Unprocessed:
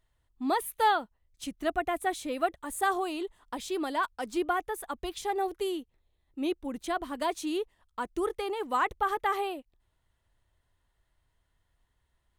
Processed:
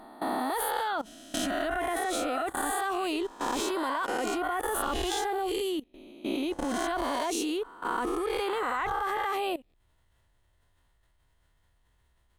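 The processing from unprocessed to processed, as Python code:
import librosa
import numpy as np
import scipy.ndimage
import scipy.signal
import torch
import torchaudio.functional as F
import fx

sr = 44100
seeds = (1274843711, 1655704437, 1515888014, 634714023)

y = fx.spec_swells(x, sr, rise_s=0.95)
y = fx.level_steps(y, sr, step_db=19)
y = y * 10.0 ** (8.0 / 20.0)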